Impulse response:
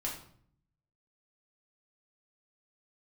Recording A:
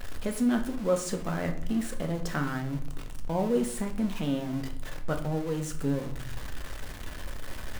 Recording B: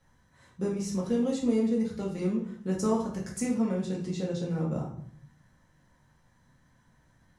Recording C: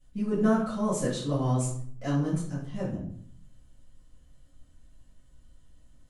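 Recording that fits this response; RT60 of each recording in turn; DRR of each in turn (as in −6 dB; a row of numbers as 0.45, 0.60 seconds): B; 0.60, 0.60, 0.60 seconds; 4.5, −4.0, −12.5 decibels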